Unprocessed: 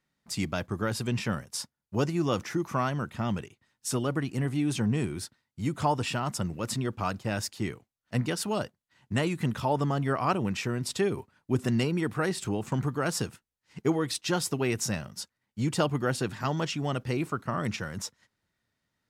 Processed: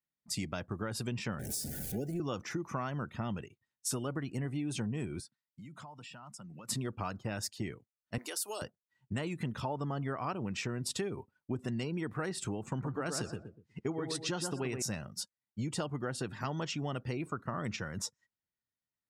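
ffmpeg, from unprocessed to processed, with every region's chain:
ffmpeg -i in.wav -filter_complex "[0:a]asettb=1/sr,asplit=3[link_01][link_02][link_03];[link_01]atrim=end=1.394[link_04];[link_02]atrim=start=1.39:end=2.2,asetpts=PTS-STARTPTS,afade=type=in:duration=0.004:curve=qsin,afade=type=out:start_time=0.806:duration=0.004:curve=qsin,aeval=exprs='val(0)+0.5*0.0376*sgn(val(0))':channel_layout=same,acrossover=split=170|500|7100[link_05][link_06][link_07][link_08];[link_05]acompressor=threshold=-41dB:ratio=3[link_09];[link_06]acompressor=threshold=-26dB:ratio=3[link_10];[link_07]acompressor=threshold=-48dB:ratio=3[link_11];[link_08]acompressor=threshold=-36dB:ratio=3[link_12];[link_09][link_10][link_11][link_12]amix=inputs=4:normalize=0,asuperstop=centerf=1100:order=20:qfactor=1.9[link_13];[link_03]atrim=start=2.196[link_14];[link_04][link_13]acrossfade=duration=0.004:curve1=hsin:curve2=qsin[link_15];[link_15][link_14]acrossfade=duration=0.004:curve1=qsin:curve2=hsin,asettb=1/sr,asplit=3[link_16][link_17][link_18];[link_16]atrim=end=5.204[link_19];[link_17]atrim=start=5.2:end=6.69,asetpts=PTS-STARTPTS,afade=type=in:duration=0.004:curve=qsin,afade=type=out:start_time=1.486:duration=0.004:curve=qsin,highpass=frequency=140:width=0.5412,highpass=frequency=140:width=1.3066,equalizer=frequency=380:width=1.2:gain=-10.5,acompressor=threshold=-42dB:ratio=20:attack=3.2:release=140:knee=1:detection=peak[link_20];[link_18]atrim=start=6.686[link_21];[link_19][link_20]acrossfade=duration=0.004:curve1=hsin:curve2=qsin[link_22];[link_22][link_21]acrossfade=duration=0.004:curve1=qsin:curve2=hsin,asettb=1/sr,asplit=3[link_23][link_24][link_25];[link_23]atrim=end=8.184[link_26];[link_24]atrim=start=8.18:end=8.62,asetpts=PTS-STARTPTS,afade=type=in:duration=0.004:curve=qsin,afade=type=out:start_time=0.436:duration=0.004:curve=qsin,highpass=frequency=360:width=0.5412,highpass=frequency=360:width=1.3066,aemphasis=mode=production:type=75kf,acompressor=threshold=-35dB:ratio=3:attack=3.2:release=140:knee=1:detection=peak[link_27];[link_25]atrim=start=8.616[link_28];[link_26][link_27]acrossfade=duration=0.004:curve1=hsin:curve2=qsin[link_29];[link_29][link_28]acrossfade=duration=0.004:curve1=qsin:curve2=hsin,asettb=1/sr,asplit=3[link_30][link_31][link_32];[link_30]atrim=end=12.704[link_33];[link_31]atrim=start=12.7:end=14.82,asetpts=PTS-STARTPTS,afade=type=in:duration=0.004:curve=qsin,afade=type=out:start_time=2.116:duration=0.004:curve=qsin,lowpass=11000,asplit=2[link_34][link_35];[link_35]adelay=122,lowpass=frequency=1900:poles=1,volume=-5dB,asplit=2[link_36][link_37];[link_37]adelay=122,lowpass=frequency=1900:poles=1,volume=0.33,asplit=2[link_38][link_39];[link_39]adelay=122,lowpass=frequency=1900:poles=1,volume=0.33,asplit=2[link_40][link_41];[link_41]adelay=122,lowpass=frequency=1900:poles=1,volume=0.33[link_42];[link_34][link_36][link_38][link_40][link_42]amix=inputs=5:normalize=0,atrim=end_sample=93492[link_43];[link_32]atrim=start=14.816[link_44];[link_33][link_43]acrossfade=duration=0.004:curve1=hsin:curve2=qsin[link_45];[link_45][link_44]acrossfade=duration=0.004:curve1=qsin:curve2=hsin,acompressor=threshold=-30dB:ratio=6,afftdn=noise_reduction=17:noise_floor=-52,highshelf=frequency=7600:gain=4.5,volume=-2.5dB" out.wav

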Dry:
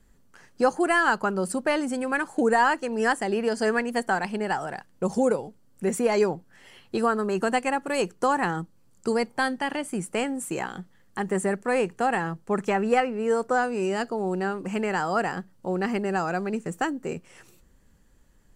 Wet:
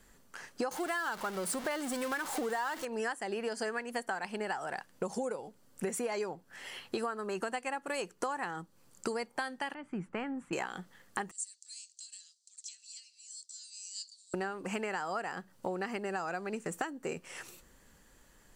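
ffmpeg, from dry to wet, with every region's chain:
ffmpeg -i in.wav -filter_complex "[0:a]asettb=1/sr,asplit=3[link_01][link_02][link_03];[link_01]atrim=end=0.714[link_04];[link_02]atrim=start=0.71:end=2.85,asetpts=PTS-STARTPTS,afade=type=in:duration=0.004:curve=qsin,afade=type=out:start_time=2.136:duration=0.004:curve=qsin,aeval=exprs='val(0)+0.5*0.0473*sgn(val(0))':channel_layout=same,bandreject=frequency=2500:width=16[link_05];[link_03]atrim=start=2.846[link_06];[link_04][link_05]acrossfade=duration=0.004:curve1=hsin:curve2=qsin[link_07];[link_07][link_06]acrossfade=duration=0.004:curve1=qsin:curve2=hsin,asettb=1/sr,asplit=3[link_08][link_09][link_10];[link_08]atrim=end=9.744[link_11];[link_09]atrim=start=9.74:end=10.53,asetpts=PTS-STARTPTS,afade=type=in:duration=0.004:curve=qsin,afade=type=out:start_time=0.786:duration=0.004:curve=qsin,lowpass=1200,equalizer=frequency=550:width_type=o:width=1.7:gain=-13.5[link_12];[link_10]atrim=start=10.526[link_13];[link_11][link_12]acrossfade=duration=0.004:curve1=hsin:curve2=qsin[link_14];[link_14][link_13]acrossfade=duration=0.004:curve1=qsin:curve2=hsin,asettb=1/sr,asplit=3[link_15][link_16][link_17];[link_15]atrim=end=11.314[link_18];[link_16]atrim=start=11.31:end=14.34,asetpts=PTS-STARTPTS,afade=type=in:duration=0.004:curve=qsin,afade=type=out:start_time=3.026:duration=0.004:curve=qsin,acompressor=threshold=-25dB:ratio=6:attack=3.2:release=140:knee=1:detection=peak,asuperpass=centerf=5900:order=8:qfactor=1.3[link_19];[link_17]atrim=start=14.336[link_20];[link_18][link_19]acrossfade=duration=0.004:curve1=hsin:curve2=qsin[link_21];[link_21][link_20]acrossfade=duration=0.004:curve1=qsin:curve2=hsin,lowshelf=frequency=320:gain=-12,acompressor=threshold=-39dB:ratio=10,volume=6.5dB" out.wav

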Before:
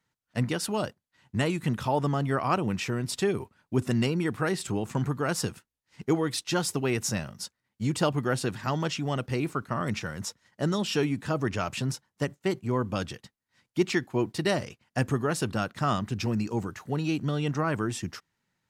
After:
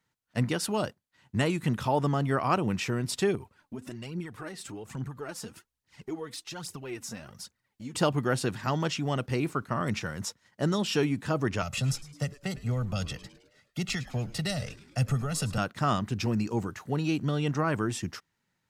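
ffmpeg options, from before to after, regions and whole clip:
ffmpeg -i in.wav -filter_complex "[0:a]asettb=1/sr,asplit=3[link_01][link_02][link_03];[link_01]atrim=end=3.354[link_04];[link_02]atrim=start=3.35:end=7.95,asetpts=PTS-STARTPTS,afade=type=in:duration=0.004:curve=qsin,afade=type=out:start_time=4.596:duration=0.004:curve=qsin,acompressor=threshold=-43dB:ratio=2.5:attack=3.2:release=140:knee=1:detection=peak,aphaser=in_gain=1:out_gain=1:delay=4.7:decay=0.57:speed=1.2:type=triangular[link_05];[link_03]atrim=start=7.946[link_06];[link_04][link_05]acrossfade=duration=0.004:curve1=hsin:curve2=qsin[link_07];[link_07][link_06]acrossfade=duration=0.004:curve1=qsin:curve2=hsin,asettb=1/sr,asplit=3[link_08][link_09][link_10];[link_08]atrim=end=11.624[link_11];[link_09]atrim=start=11.62:end=15.58,asetpts=PTS-STARTPTS,afade=type=in:duration=0.004:curve=qsin,afade=type=out:start_time=3.956:duration=0.004:curve=qsin,aecho=1:1:1.5:0.81,atrim=end_sample=174636,acrossover=split=200|3000[link_12][link_13][link_14];[link_13]acompressor=threshold=-35dB:ratio=6:attack=3.2:release=140:knee=2.83:detection=peak[link_15];[link_12][link_15][link_14]amix=inputs=3:normalize=0,asplit=6[link_16][link_17][link_18][link_19][link_20][link_21];[link_17]adelay=106,afreqshift=-140,volume=-17dB[link_22];[link_18]adelay=212,afreqshift=-280,volume=-22.7dB[link_23];[link_19]adelay=318,afreqshift=-420,volume=-28.4dB[link_24];[link_20]adelay=424,afreqshift=-560,volume=-34dB[link_25];[link_21]adelay=530,afreqshift=-700,volume=-39.7dB[link_26];[link_16][link_22][link_23][link_24][link_25][link_26]amix=inputs=6:normalize=0,atrim=end_sample=174636[link_27];[link_10]atrim=start=15.576[link_28];[link_11][link_27]acrossfade=duration=0.004:curve1=hsin:curve2=qsin[link_29];[link_29][link_28]acrossfade=duration=0.004:curve1=qsin:curve2=hsin" out.wav

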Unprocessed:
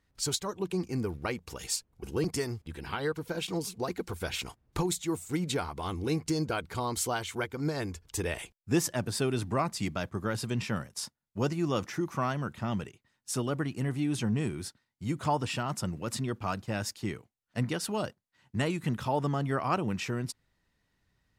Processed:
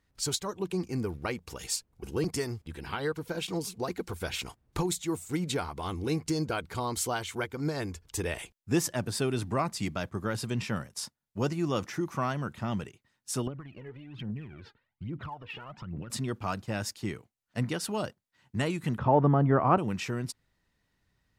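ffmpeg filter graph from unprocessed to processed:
ffmpeg -i in.wav -filter_complex "[0:a]asettb=1/sr,asplit=3[link_01][link_02][link_03];[link_01]atrim=end=13.474[link_04];[link_02]atrim=start=13.47:end=16.1,asetpts=PTS-STARTPTS,afade=type=in:duration=0.004:curve=qsin,afade=type=out:start_time=2.626:duration=0.004:curve=qsin,lowpass=frequency=3000:width=0.5412,lowpass=frequency=3000:width=1.3066,acompressor=threshold=-40dB:ratio=16:attack=3.2:release=140:knee=1:detection=peak,aphaser=in_gain=1:out_gain=1:delay=2.5:decay=0.7:speed=1.2:type=triangular[link_05];[link_03]atrim=start=16.096[link_06];[link_04][link_05]acrossfade=duration=0.004:curve1=hsin:curve2=qsin[link_07];[link_07][link_06]acrossfade=duration=0.004:curve1=qsin:curve2=hsin,asettb=1/sr,asplit=3[link_08][link_09][link_10];[link_08]atrim=end=18.984[link_11];[link_09]atrim=start=18.98:end=19.78,asetpts=PTS-STARTPTS,afade=type=in:duration=0.004:curve=qsin,afade=type=out:start_time=0.796:duration=0.004:curve=qsin,lowpass=1200,acontrast=88[link_12];[link_10]atrim=start=19.776[link_13];[link_11][link_12]acrossfade=duration=0.004:curve1=hsin:curve2=qsin[link_14];[link_14][link_13]acrossfade=duration=0.004:curve1=qsin:curve2=hsin" out.wav

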